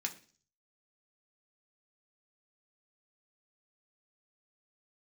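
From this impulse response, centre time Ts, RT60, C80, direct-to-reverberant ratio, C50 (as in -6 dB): 9 ms, 0.40 s, 19.0 dB, 1.0 dB, 14.5 dB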